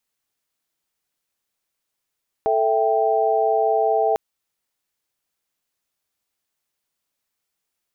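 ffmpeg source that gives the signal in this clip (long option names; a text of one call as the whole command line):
ffmpeg -f lavfi -i "aevalsrc='0.0944*(sin(2*PI*440*t)+sin(2*PI*659.26*t)+sin(2*PI*783.99*t))':duration=1.7:sample_rate=44100" out.wav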